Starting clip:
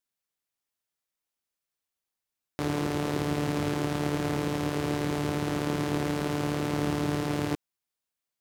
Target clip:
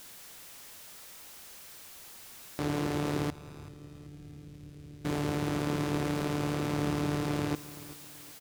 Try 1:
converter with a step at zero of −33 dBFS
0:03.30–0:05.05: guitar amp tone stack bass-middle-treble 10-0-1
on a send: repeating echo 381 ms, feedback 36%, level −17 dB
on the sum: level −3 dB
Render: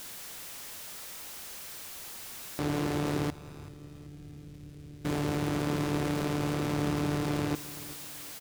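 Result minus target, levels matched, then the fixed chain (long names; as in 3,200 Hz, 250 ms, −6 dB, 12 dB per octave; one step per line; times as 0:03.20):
converter with a step at zero: distortion +5 dB
converter with a step at zero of −39 dBFS
0:03.30–0:05.05: guitar amp tone stack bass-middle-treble 10-0-1
on a send: repeating echo 381 ms, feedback 36%, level −17 dB
on the sum: level −3 dB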